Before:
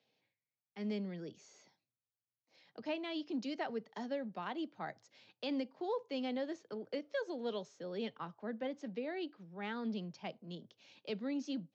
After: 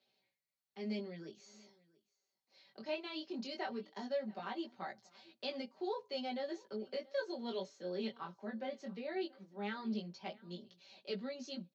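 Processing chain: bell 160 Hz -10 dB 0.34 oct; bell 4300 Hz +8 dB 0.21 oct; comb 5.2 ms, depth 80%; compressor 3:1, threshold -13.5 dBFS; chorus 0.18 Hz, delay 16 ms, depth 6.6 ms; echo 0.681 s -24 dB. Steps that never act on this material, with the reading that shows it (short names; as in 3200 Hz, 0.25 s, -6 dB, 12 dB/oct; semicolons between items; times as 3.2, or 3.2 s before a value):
compressor, threshold -13.5 dBFS: input peak -24.5 dBFS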